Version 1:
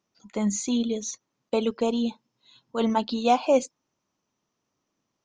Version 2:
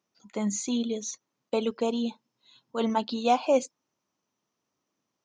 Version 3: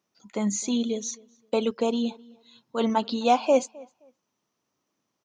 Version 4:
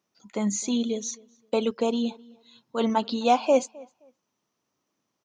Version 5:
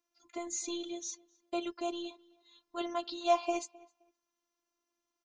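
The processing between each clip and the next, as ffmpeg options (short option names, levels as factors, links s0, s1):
-af "highpass=f=140:p=1,volume=0.794"
-filter_complex "[0:a]asplit=2[s0][s1];[s1]adelay=261,lowpass=f=2900:p=1,volume=0.0668,asplit=2[s2][s3];[s3]adelay=261,lowpass=f=2900:p=1,volume=0.22[s4];[s0][s2][s4]amix=inputs=3:normalize=0,volume=1.33"
-af anull
-af "lowshelf=f=370:g=-3.5,afftfilt=real='hypot(re,im)*cos(PI*b)':imag='0':win_size=512:overlap=0.75,volume=0.668"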